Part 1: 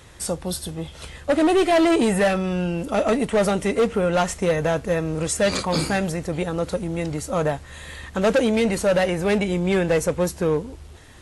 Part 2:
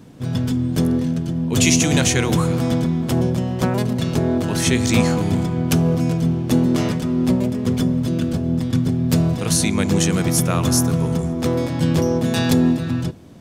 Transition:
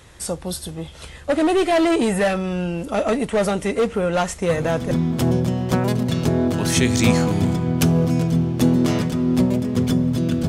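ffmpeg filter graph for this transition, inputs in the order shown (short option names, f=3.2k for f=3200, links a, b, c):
-filter_complex "[1:a]asplit=2[a][b];[0:a]apad=whole_dur=10.48,atrim=end=10.48,atrim=end=4.912[c];[b]atrim=start=2.808:end=8.38[d];[a]atrim=start=2.39:end=2.81,asetpts=PTS-STARTPTS,volume=-9.5dB,afade=t=in:d=0.004:c=hsin,afade=t=out:st=0.416:d=0.004:c=hsin,adelay=198009S[e];[c][d]acrossfade=d=0.004:c1=hsin:c2=hsin[f];[f][e]amix=inputs=2:normalize=0"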